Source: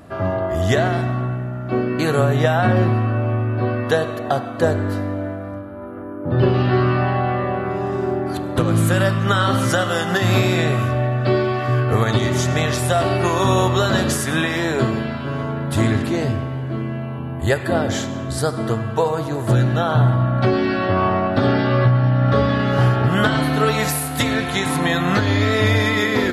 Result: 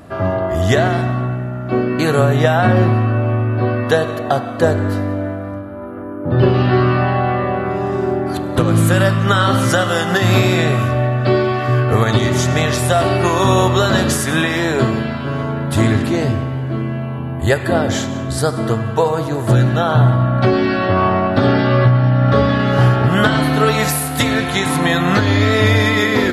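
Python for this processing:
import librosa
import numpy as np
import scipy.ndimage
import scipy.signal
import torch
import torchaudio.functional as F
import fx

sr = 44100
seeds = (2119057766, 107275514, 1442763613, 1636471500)

y = x + 10.0 ** (-21.5 / 20.0) * np.pad(x, (int(182 * sr / 1000.0), 0))[:len(x)]
y = F.gain(torch.from_numpy(y), 3.5).numpy()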